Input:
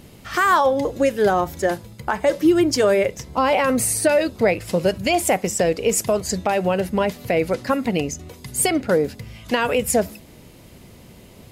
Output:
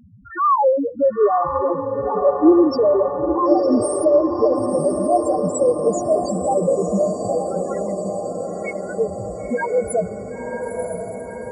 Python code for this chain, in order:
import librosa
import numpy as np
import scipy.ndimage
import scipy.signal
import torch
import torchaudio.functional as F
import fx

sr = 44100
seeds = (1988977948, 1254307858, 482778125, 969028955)

y = fx.auto_wah(x, sr, base_hz=640.0, top_hz=2000.0, q=5.6, full_db=-15.0, direction='up', at=(7.38, 9.0))
y = fx.spec_topn(y, sr, count=1)
y = fx.echo_diffused(y, sr, ms=992, feedback_pct=64, wet_db=-5.5)
y = F.gain(torch.from_numpy(y), 8.0).numpy()